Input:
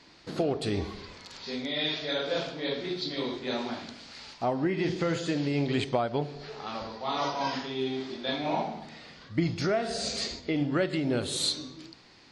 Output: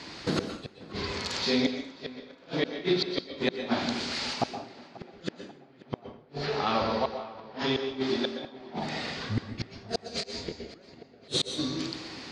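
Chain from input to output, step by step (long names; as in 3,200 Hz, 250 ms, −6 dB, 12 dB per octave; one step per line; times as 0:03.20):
0:06.46–0:07.59: low-pass filter 5,000 Hz 12 dB per octave
treble cut that deepens with the level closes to 2,300 Hz, closed at −24.5 dBFS
high-pass filter 50 Hz 12 dB per octave
in parallel at 0 dB: downward compressor 12 to 1, threshold −40 dBFS, peak gain reduction 19 dB
on the sum: gate with flip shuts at −21 dBFS, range −40 dB
on a send: tape delay 537 ms, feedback 64%, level −17 dB, low-pass 2,400 Hz
on the sum: dense smooth reverb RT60 0.51 s, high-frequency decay 0.95×, pre-delay 110 ms, DRR 7.5 dB
0:10.08–0:10.59: micro pitch shift up and down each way 25 cents → 38 cents
level +6.5 dB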